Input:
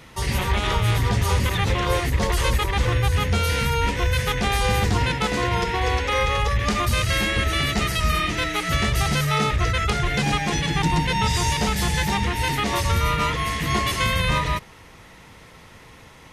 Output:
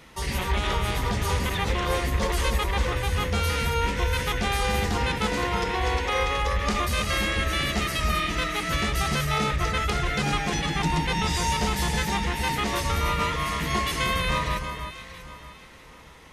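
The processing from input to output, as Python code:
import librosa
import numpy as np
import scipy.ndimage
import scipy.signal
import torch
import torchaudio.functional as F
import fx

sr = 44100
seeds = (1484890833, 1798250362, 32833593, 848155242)

y = fx.peak_eq(x, sr, hz=110.0, db=-11.5, octaves=0.4)
y = fx.echo_alternate(y, sr, ms=318, hz=1800.0, feedback_pct=55, wet_db=-7.0)
y = y * 10.0 ** (-3.5 / 20.0)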